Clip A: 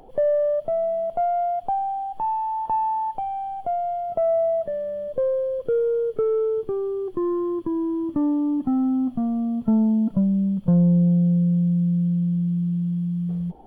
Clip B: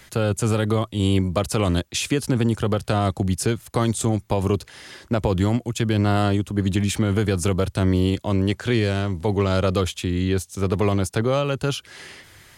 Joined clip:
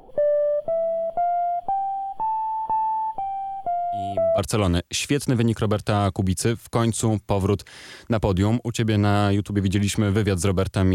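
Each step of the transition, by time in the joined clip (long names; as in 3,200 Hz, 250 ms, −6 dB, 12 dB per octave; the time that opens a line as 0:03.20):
clip A
0:03.92: mix in clip B from 0:00.93 0.46 s −16.5 dB
0:04.38: continue with clip B from 0:01.39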